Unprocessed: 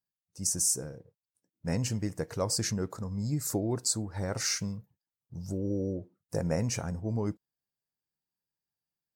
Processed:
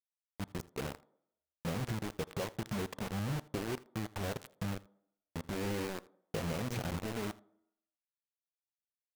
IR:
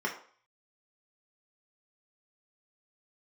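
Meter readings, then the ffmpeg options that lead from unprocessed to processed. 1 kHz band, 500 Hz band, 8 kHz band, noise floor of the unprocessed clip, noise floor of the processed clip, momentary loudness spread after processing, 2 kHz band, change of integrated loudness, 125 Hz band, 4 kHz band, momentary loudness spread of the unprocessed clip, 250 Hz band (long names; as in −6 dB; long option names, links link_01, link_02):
0.0 dB, −5.0 dB, −19.0 dB, below −85 dBFS, below −85 dBFS, 8 LU, 0.0 dB, −7.5 dB, −6.5 dB, −8.5 dB, 12 LU, −5.5 dB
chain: -filter_complex "[0:a]lowpass=1100,bandreject=frequency=60:width_type=h:width=6,bandreject=frequency=120:width_type=h:width=6,bandreject=frequency=180:width_type=h:width=6,bandreject=frequency=240:width_type=h:width=6,bandreject=frequency=300:width_type=h:width=6,acompressor=threshold=-33dB:ratio=16,flanger=delay=4.2:depth=1.7:regen=-65:speed=1.4:shape=triangular,acrusher=bits=6:mix=0:aa=0.000001,aecho=1:1:81:0.0841,asplit=2[link_01][link_02];[1:a]atrim=start_sample=2205,asetrate=27342,aresample=44100[link_03];[link_02][link_03]afir=irnorm=-1:irlink=0,volume=-28dB[link_04];[link_01][link_04]amix=inputs=2:normalize=0,volume=4.5dB"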